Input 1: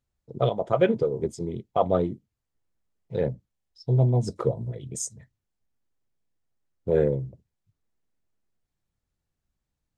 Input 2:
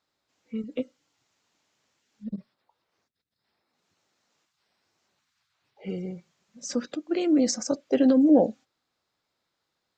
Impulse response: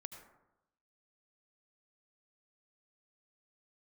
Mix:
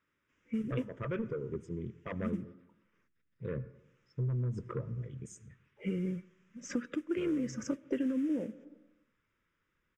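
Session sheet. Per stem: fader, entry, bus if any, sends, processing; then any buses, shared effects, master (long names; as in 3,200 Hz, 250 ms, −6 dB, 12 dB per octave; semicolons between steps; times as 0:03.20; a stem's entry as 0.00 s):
−8.0 dB, 0.30 s, send −4.5 dB, soft clipping −18 dBFS, distortion −13 dB
+3.0 dB, 0.00 s, send −15 dB, noise that follows the level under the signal 21 dB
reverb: on, RT60 0.90 s, pre-delay 67 ms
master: low-pass filter 4,200 Hz 12 dB per octave; phaser with its sweep stopped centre 1,800 Hz, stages 4; downward compressor 10 to 1, threshold −30 dBFS, peak gain reduction 17.5 dB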